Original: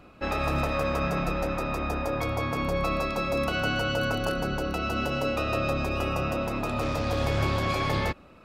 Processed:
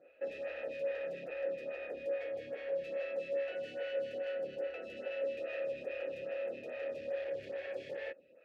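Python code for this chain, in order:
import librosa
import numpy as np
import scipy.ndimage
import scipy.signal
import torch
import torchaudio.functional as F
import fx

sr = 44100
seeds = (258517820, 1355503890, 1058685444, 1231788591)

y = np.clip(x, -10.0 ** (-29.5 / 20.0), 10.0 ** (-29.5 / 20.0))
y = fx.vowel_filter(y, sr, vowel='e')
y = fx.stagger_phaser(y, sr, hz=2.4)
y = y * 10.0 ** (3.5 / 20.0)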